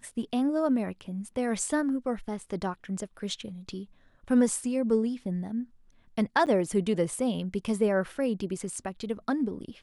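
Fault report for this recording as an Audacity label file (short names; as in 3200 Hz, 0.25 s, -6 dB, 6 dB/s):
6.460000	6.470000	gap 8.6 ms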